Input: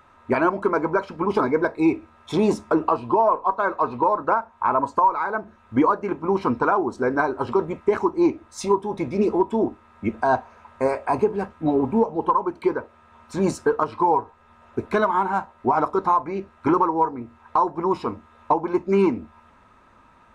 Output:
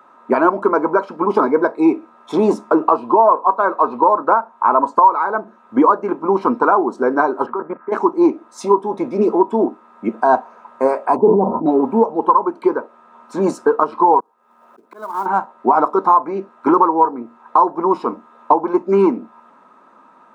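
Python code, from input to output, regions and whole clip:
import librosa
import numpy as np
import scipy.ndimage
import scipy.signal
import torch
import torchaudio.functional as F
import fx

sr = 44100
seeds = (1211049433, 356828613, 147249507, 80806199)

y = fx.chain(x, sr, fx.peak_eq(hz=84.0, db=-7.0, octaves=1.0),
    fx.level_steps(step_db=14),
    fx.lowpass_res(hz=1600.0, q=3.9), at=(7.46, 7.92))
y = fx.chain(y, sr, fx.cheby1_lowpass(hz=990.0, order=5),
    fx.low_shelf(hz=160.0, db=8.5),
    fx.sustainer(db_per_s=28.0), at=(11.16, 11.66))
y = fx.chain(y, sr, fx.low_shelf(hz=110.0, db=-7.5),
    fx.auto_swell(attack_ms=646.0),
    fx.quant_float(bits=2), at=(14.2, 15.26))
y = scipy.signal.sosfilt(scipy.signal.butter(4, 210.0, 'highpass', fs=sr, output='sos'), y)
y = fx.high_shelf_res(y, sr, hz=1600.0, db=-6.5, q=1.5)
y = F.gain(torch.from_numpy(y), 5.5).numpy()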